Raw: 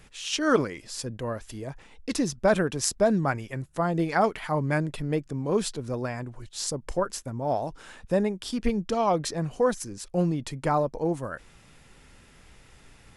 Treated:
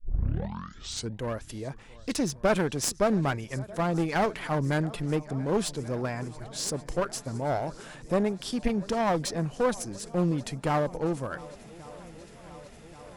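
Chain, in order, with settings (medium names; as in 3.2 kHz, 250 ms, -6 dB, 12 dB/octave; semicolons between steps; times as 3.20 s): tape start-up on the opening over 1.16 s; shuffle delay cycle 1129 ms, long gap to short 1.5:1, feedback 70%, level -23 dB; one-sided clip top -27.5 dBFS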